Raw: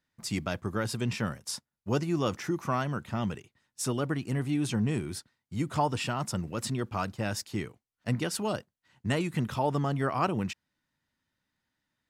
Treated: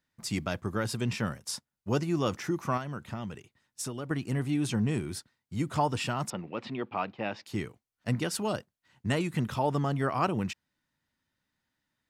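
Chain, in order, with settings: 2.77–4.11 s: compression 10:1, threshold -33 dBFS, peak gain reduction 8.5 dB; 6.30–7.46 s: cabinet simulation 230–3500 Hz, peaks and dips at 800 Hz +4 dB, 1.5 kHz -4 dB, 2.4 kHz +4 dB

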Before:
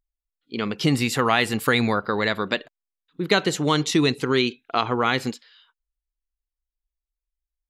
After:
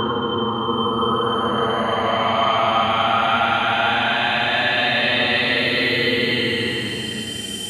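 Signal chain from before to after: whistle 3.1 kHz -29 dBFS; Paulstretch 32×, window 0.05 s, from 1.23 s

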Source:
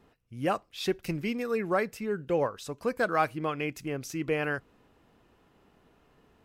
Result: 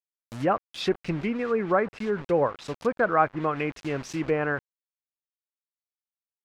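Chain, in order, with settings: bit crusher 7-bit; low-pass that closes with the level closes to 1.4 kHz, closed at -26 dBFS; dynamic bell 1.5 kHz, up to +4 dB, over -41 dBFS, Q 0.77; trim +3.5 dB

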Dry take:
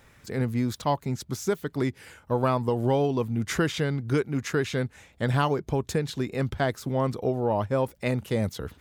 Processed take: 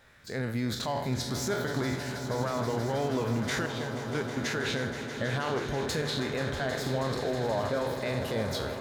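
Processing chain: spectral sustain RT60 0.43 s; 3.66–4.37 s: gate -20 dBFS, range -13 dB; fifteen-band graphic EQ 630 Hz +6 dB, 1.6 kHz +8 dB, 4 kHz +8 dB; level rider gain up to 7 dB; peak limiter -14.5 dBFS, peak gain reduction 12 dB; echo with a slow build-up 160 ms, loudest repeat 5, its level -13.5 dB; trim -8 dB

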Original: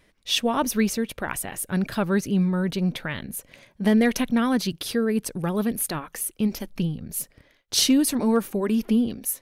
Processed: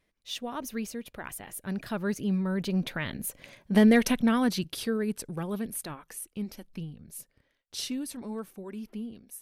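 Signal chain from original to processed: Doppler pass-by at 3.66 s, 11 m/s, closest 8.4 m

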